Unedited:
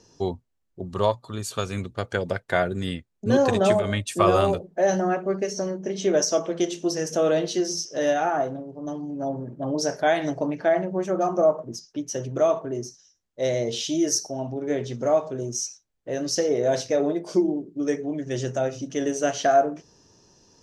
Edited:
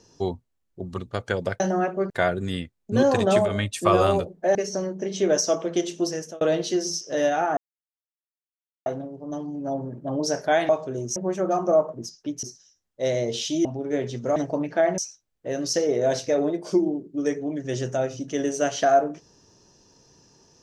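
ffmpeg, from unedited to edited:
ffmpeg -i in.wav -filter_complex "[0:a]asplit=13[link_01][link_02][link_03][link_04][link_05][link_06][link_07][link_08][link_09][link_10][link_11][link_12][link_13];[link_01]atrim=end=0.982[link_14];[link_02]atrim=start=1.818:end=2.442[link_15];[link_03]atrim=start=4.888:end=5.392[link_16];[link_04]atrim=start=2.438:end=4.892[link_17];[link_05]atrim=start=5.388:end=7.25,asetpts=PTS-STARTPTS,afade=type=out:start_time=1.512:duration=0.35[link_18];[link_06]atrim=start=7.25:end=8.41,asetpts=PTS-STARTPTS,afade=type=in:duration=0.004:curve=hsin,afade=type=out:start_time=1.156:duration=0.004:curve=hsin,apad=pad_dur=1.29[link_19];[link_07]atrim=start=8.41:end=10.242,asetpts=PTS-STARTPTS,afade=type=in:duration=0.004:curve=hsin[link_20];[link_08]atrim=start=15.128:end=15.602[link_21];[link_09]atrim=start=10.858:end=12.132[link_22];[link_10]atrim=start=12.818:end=14.042[link_23];[link_11]atrim=start=14.418:end=15.132[link_24];[link_12]atrim=start=10.238:end=10.862[link_25];[link_13]atrim=start=15.598[link_26];[link_14][link_15]acrossfade=duration=0.004:curve1=hsin:curve2=hsin[link_27];[link_27][link_16]acrossfade=duration=0.004:curve1=hsin:curve2=hsin[link_28];[link_28][link_17]acrossfade=duration=0.004:curve1=hsin:curve2=hsin[link_29];[link_18][link_19][link_20]concat=n=3:v=0:a=1[link_30];[link_29][link_30]acrossfade=duration=0.004:curve1=hsin:curve2=hsin[link_31];[link_31][link_21]acrossfade=duration=0.004:curve1=hsin:curve2=hsin[link_32];[link_32][link_22]acrossfade=duration=0.004:curve1=hsin:curve2=hsin[link_33];[link_33][link_23]acrossfade=duration=0.004:curve1=hsin:curve2=hsin[link_34];[link_34][link_24]acrossfade=duration=0.004:curve1=hsin:curve2=hsin[link_35];[link_35][link_25]acrossfade=duration=0.004:curve1=hsin:curve2=hsin[link_36];[link_36][link_26]acrossfade=duration=0.004:curve1=hsin:curve2=hsin" out.wav

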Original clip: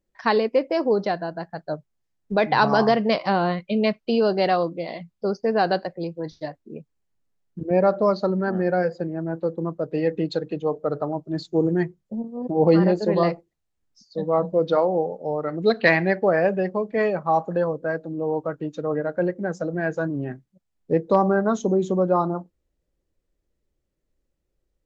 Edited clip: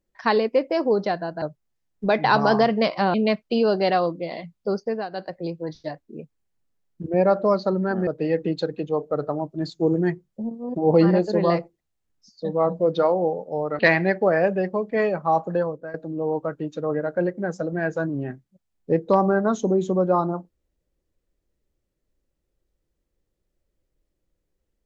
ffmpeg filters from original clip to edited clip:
ffmpeg -i in.wav -filter_complex "[0:a]asplit=8[link_01][link_02][link_03][link_04][link_05][link_06][link_07][link_08];[link_01]atrim=end=1.422[link_09];[link_02]atrim=start=1.698:end=3.422[link_10];[link_03]atrim=start=3.708:end=5.66,asetpts=PTS-STARTPTS,afade=type=out:start_time=1.652:duration=0.3:silence=0.158489[link_11];[link_04]atrim=start=5.66:end=5.67,asetpts=PTS-STARTPTS,volume=-16dB[link_12];[link_05]atrim=start=5.67:end=8.642,asetpts=PTS-STARTPTS,afade=type=in:duration=0.3:silence=0.158489[link_13];[link_06]atrim=start=9.798:end=15.522[link_14];[link_07]atrim=start=15.798:end=17.95,asetpts=PTS-STARTPTS,afade=type=out:start_time=1.782:duration=0.37:silence=0.188365[link_15];[link_08]atrim=start=17.95,asetpts=PTS-STARTPTS,afade=type=in:duration=0.004:curve=hsin:silence=0.188365[link_16];[link_09][link_10]acrossfade=duration=0.004:curve1=hsin:curve2=hsin[link_17];[link_11][link_12][link_13]concat=n=3:v=0:a=1[link_18];[link_17][link_18]acrossfade=duration=0.004:curve1=hsin:curve2=hsin[link_19];[link_19][link_14]acrossfade=duration=0.004:curve1=hsin:curve2=hsin[link_20];[link_15][link_16]concat=n=2:v=0:a=1[link_21];[link_20][link_21]acrossfade=duration=0.004:curve1=hsin:curve2=hsin" out.wav

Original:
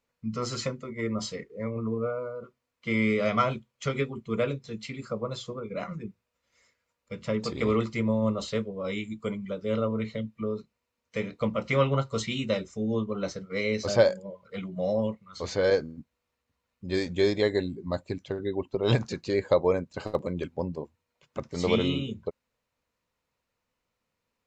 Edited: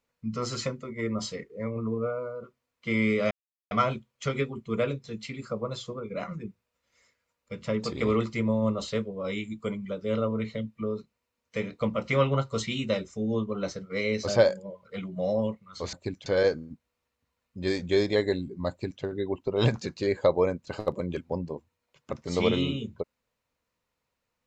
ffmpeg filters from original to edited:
ffmpeg -i in.wav -filter_complex "[0:a]asplit=4[link_01][link_02][link_03][link_04];[link_01]atrim=end=3.31,asetpts=PTS-STARTPTS,afade=type=out:start_time=3.306:duration=0.004:curve=hsin,apad=pad_dur=0.4[link_05];[link_02]atrim=start=3.31:end=15.532,asetpts=PTS-STARTPTS,afade=type=in:duration=0.004:curve=hsin[link_06];[link_03]atrim=start=17.968:end=18.302[link_07];[link_04]atrim=start=15.528[link_08];[link_05][link_06]concat=n=2:v=0:a=1[link_09];[link_09][link_07]acrossfade=duration=0.004:curve1=hsin:curve2=hsin[link_10];[link_10][link_08]acrossfade=duration=0.004:curve1=hsin:curve2=hsin" out.wav

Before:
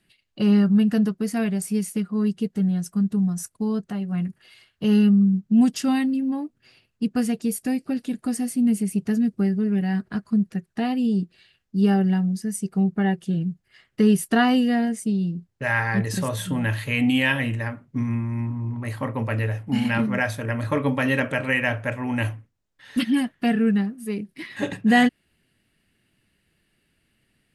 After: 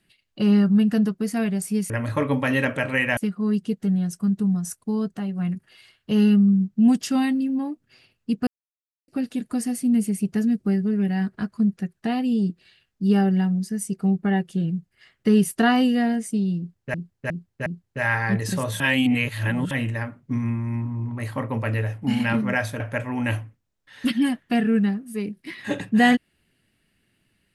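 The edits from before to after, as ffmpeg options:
ffmpeg -i in.wav -filter_complex "[0:a]asplit=11[link_01][link_02][link_03][link_04][link_05][link_06][link_07][link_08][link_09][link_10][link_11];[link_01]atrim=end=1.902[link_12];[link_02]atrim=start=20.448:end=21.722[link_13];[link_03]atrim=start=1.898:end=7.2,asetpts=PTS-STARTPTS,afade=type=out:start_time=5.298:duration=0.004:curve=hsin[link_14];[link_04]atrim=start=7.2:end=7.81,asetpts=PTS-STARTPTS,volume=0[link_15];[link_05]atrim=start=7.81:end=15.672,asetpts=PTS-STARTPTS,afade=type=in:duration=0.004:curve=hsin[link_16];[link_06]atrim=start=15.308:end=15.672[link_17];[link_07]atrim=start=15.308:end=15.672[link_18];[link_08]atrim=start=15.308:end=16.452[link_19];[link_09]atrim=start=16.448:end=17.362,asetpts=PTS-STARTPTS,areverse[link_20];[link_10]atrim=start=17.358:end=20.452[link_21];[link_11]atrim=start=21.718[link_22];[link_12][link_13]acrossfade=duration=0.004:curve1=hsin:curve2=hsin[link_23];[link_14][link_15][link_16]concat=n=3:v=0:a=1[link_24];[link_23][link_24]acrossfade=duration=0.004:curve1=hsin:curve2=hsin[link_25];[link_25][link_17]acrossfade=duration=0.004:curve1=hsin:curve2=hsin[link_26];[link_26][link_18]acrossfade=duration=0.004:curve1=hsin:curve2=hsin[link_27];[link_27][link_19]acrossfade=duration=0.004:curve1=hsin:curve2=hsin[link_28];[link_28][link_20]acrossfade=duration=0.004:curve1=hsin:curve2=hsin[link_29];[link_29][link_21]acrossfade=duration=0.004:curve1=hsin:curve2=hsin[link_30];[link_30][link_22]acrossfade=duration=0.004:curve1=hsin:curve2=hsin" out.wav

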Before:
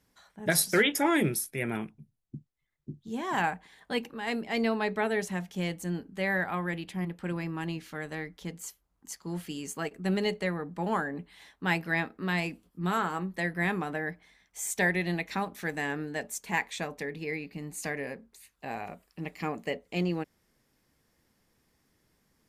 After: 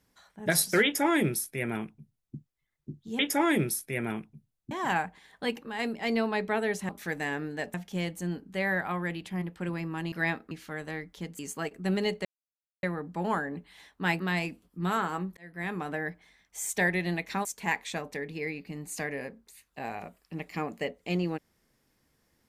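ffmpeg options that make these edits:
ffmpeg -i in.wav -filter_complex "[0:a]asplit=12[link_01][link_02][link_03][link_04][link_05][link_06][link_07][link_08][link_09][link_10][link_11][link_12];[link_01]atrim=end=3.192[link_13];[link_02]atrim=start=0.838:end=2.362[link_14];[link_03]atrim=start=3.188:end=5.372[link_15];[link_04]atrim=start=15.458:end=16.312[link_16];[link_05]atrim=start=5.368:end=7.752[link_17];[link_06]atrim=start=11.818:end=12.212[link_18];[link_07]atrim=start=7.748:end=8.632[link_19];[link_08]atrim=start=9.588:end=10.45,asetpts=PTS-STARTPTS,afade=type=out:start_time=0.858:duration=0.004:curve=hsin,apad=pad_dur=0.58[link_20];[link_09]atrim=start=10.45:end=11.822,asetpts=PTS-STARTPTS,afade=type=in:duration=0.004:curve=hsin[link_21];[link_10]atrim=start=12.208:end=13.38,asetpts=PTS-STARTPTS,afade=type=out:start_time=1.168:duration=0.004:curve=hsin[link_22];[link_11]atrim=start=13.38:end=15.462,asetpts=PTS-STARTPTS,afade=type=in:duration=0.55[link_23];[link_12]atrim=start=16.308[link_24];[link_13][link_14]acrossfade=duration=0.004:curve1=hsin:curve2=hsin[link_25];[link_25][link_15]acrossfade=duration=0.004:curve1=hsin:curve2=hsin[link_26];[link_26][link_16]acrossfade=duration=0.004:curve1=hsin:curve2=hsin[link_27];[link_27][link_17]acrossfade=duration=0.004:curve1=hsin:curve2=hsin[link_28];[link_28][link_18]acrossfade=duration=0.004:curve1=hsin:curve2=hsin[link_29];[link_29][link_19]acrossfade=duration=0.004:curve1=hsin:curve2=hsin[link_30];[link_20][link_21]concat=n=2:v=0:a=1[link_31];[link_30][link_31]acrossfade=duration=0.004:curve1=hsin:curve2=hsin[link_32];[link_22][link_23]concat=n=2:v=0:a=1[link_33];[link_32][link_33]acrossfade=duration=0.004:curve1=hsin:curve2=hsin[link_34];[link_34][link_24]acrossfade=duration=0.004:curve1=hsin:curve2=hsin" out.wav

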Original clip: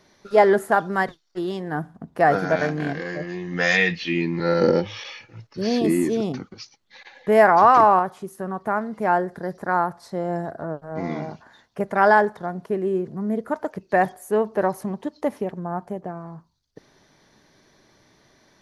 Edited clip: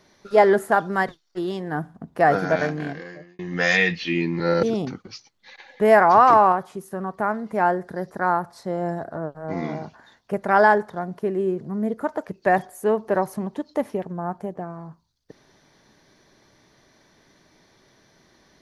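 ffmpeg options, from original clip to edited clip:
ffmpeg -i in.wav -filter_complex "[0:a]asplit=3[link_01][link_02][link_03];[link_01]atrim=end=3.39,asetpts=PTS-STARTPTS,afade=type=out:start_time=2.59:duration=0.8[link_04];[link_02]atrim=start=3.39:end=4.632,asetpts=PTS-STARTPTS,afade=type=in:duration=0.004:curve=hsin[link_05];[link_03]atrim=start=6.098[link_06];[link_04][link_05]concat=n=2:v=0:a=1[link_07];[link_07][link_06]acrossfade=duration=0.004:curve1=hsin:curve2=hsin" out.wav

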